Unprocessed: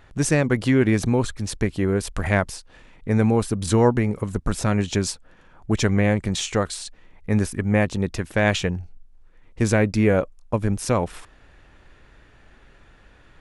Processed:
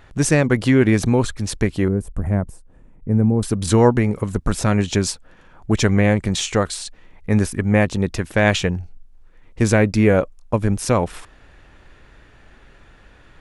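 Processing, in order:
0:01.88–0:03.43: drawn EQ curve 200 Hz 0 dB, 1,100 Hz −13 dB, 4,500 Hz −29 dB, 8,600 Hz −12 dB
level +3.5 dB

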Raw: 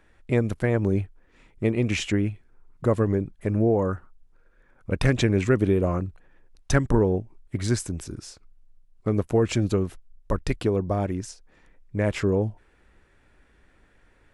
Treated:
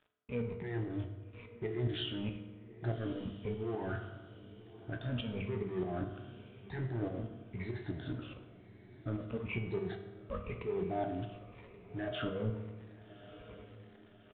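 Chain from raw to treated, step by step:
rippled gain that drifts along the octave scale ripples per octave 0.84, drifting −0.99 Hz, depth 23 dB
high-pass filter 48 Hz 12 dB per octave
reversed playback
downward compressor 5 to 1, threshold −28 dBFS, peak gain reduction 16.5 dB
reversed playback
brickwall limiter −28 dBFS, peak gain reduction 11 dB
leveller curve on the samples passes 1
tuned comb filter 61 Hz, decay 0.17 s, harmonics all, mix 90%
dead-zone distortion −54.5 dBFS
shaped tremolo saw up 4.8 Hz, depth 70%
feedback delay with all-pass diffusion 1,185 ms, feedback 45%, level −16 dB
on a send at −5 dB: convolution reverb RT60 1.3 s, pre-delay 4 ms
on the sum: downsampling to 8,000 Hz
level +5 dB

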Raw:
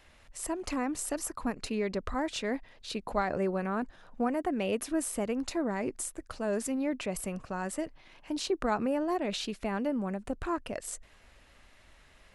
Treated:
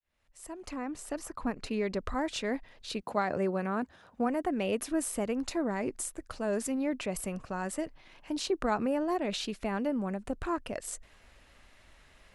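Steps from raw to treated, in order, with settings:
fade in at the beginning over 1.44 s
0:00.70–0:01.71: high-shelf EQ 5,600 Hz −9.5 dB
0:03.01–0:04.25: high-pass filter 100 Hz → 48 Hz 24 dB per octave

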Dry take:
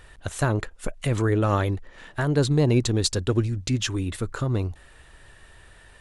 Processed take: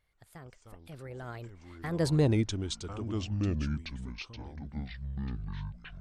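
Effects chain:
source passing by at 0:02.20, 55 m/s, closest 10 metres
delay with pitch and tempo change per echo 130 ms, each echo −7 semitones, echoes 2, each echo −6 dB
level −4.5 dB

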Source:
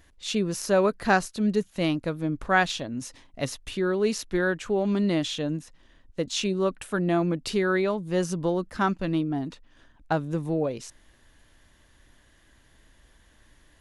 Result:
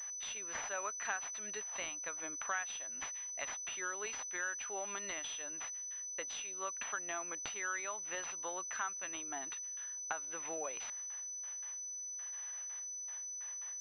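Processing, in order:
high-pass filter 1,100 Hz 12 dB per octave
noise gate with hold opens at −53 dBFS
spectral tilt +2 dB per octave
downward compressor 4 to 1, threshold −43 dBFS, peak gain reduction 21 dB
switching amplifier with a slow clock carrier 6,000 Hz
level +4 dB

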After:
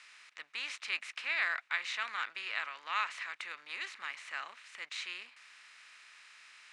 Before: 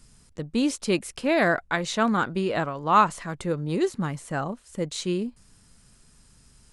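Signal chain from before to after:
compressor on every frequency bin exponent 0.6
four-pole ladder band-pass 2,600 Hz, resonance 45%
level +2.5 dB

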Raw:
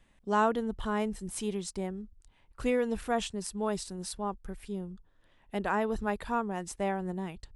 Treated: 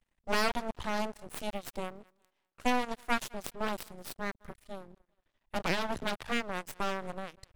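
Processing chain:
0:02.03–0:03.32: Butterworth high-pass 240 Hz 72 dB per octave
harmonic generator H 3 −13 dB, 6 −7 dB, 8 −33 dB, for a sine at −14.5 dBFS
feedback echo with a high-pass in the loop 202 ms, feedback 31%, high-pass 310 Hz, level −22.5 dB
half-wave rectification
0:05.56–0:06.80: multiband upward and downward compressor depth 40%

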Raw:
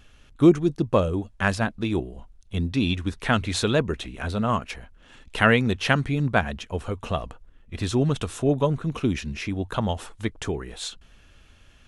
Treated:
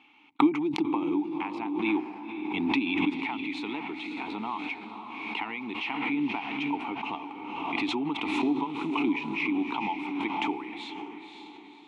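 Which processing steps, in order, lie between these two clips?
high-pass filter 230 Hz 12 dB per octave
noise gate −52 dBFS, range −39 dB
flat-topped bell 1,700 Hz +9.5 dB 2.9 octaves
downward compressor 6 to 1, threshold −24 dBFS, peak gain reduction 18 dB
formant filter u
feedback delay with all-pass diffusion 528 ms, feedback 45%, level −7.5 dB
background raised ahead of every attack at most 30 dB per second
level +8 dB

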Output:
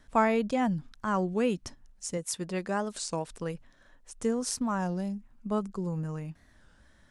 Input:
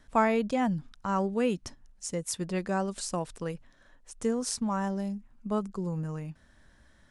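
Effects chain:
0:02.17–0:03.31: low-shelf EQ 120 Hz −9 dB
wow of a warped record 33 1/3 rpm, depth 160 cents

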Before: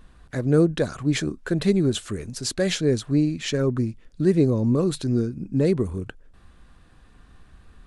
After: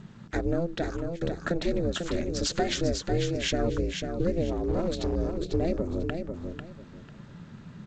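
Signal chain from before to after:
0:02.38–0:02.95: comb filter 7.1 ms, depth 59%
downward compressor 8 to 1, threshold −26 dBFS, peak gain reduction 14 dB
ring modulation 170 Hz
0:00.72–0:01.21: fade out
0:04.51–0:05.16: gain into a clipping stage and back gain 27.5 dB
repeating echo 496 ms, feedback 22%, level −6 dB
level +5 dB
G.722 64 kbit/s 16,000 Hz

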